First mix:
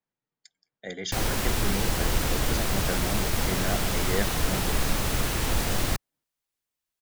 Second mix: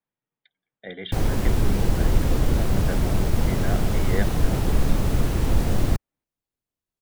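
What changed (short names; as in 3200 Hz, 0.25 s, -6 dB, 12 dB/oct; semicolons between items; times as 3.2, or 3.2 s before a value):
speech: add steep low-pass 3800 Hz 96 dB/oct; background: add tilt shelf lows +7.5 dB, about 730 Hz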